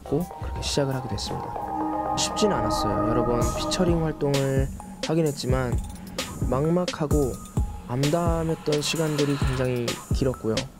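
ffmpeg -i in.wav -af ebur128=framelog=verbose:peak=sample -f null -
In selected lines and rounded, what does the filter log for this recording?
Integrated loudness:
  I:         -25.5 LUFS
  Threshold: -35.5 LUFS
Loudness range:
  LRA:         1.9 LU
  Threshold: -45.3 LUFS
  LRA low:   -26.2 LUFS
  LRA high:  -24.2 LUFS
Sample peak:
  Peak:       -9.3 dBFS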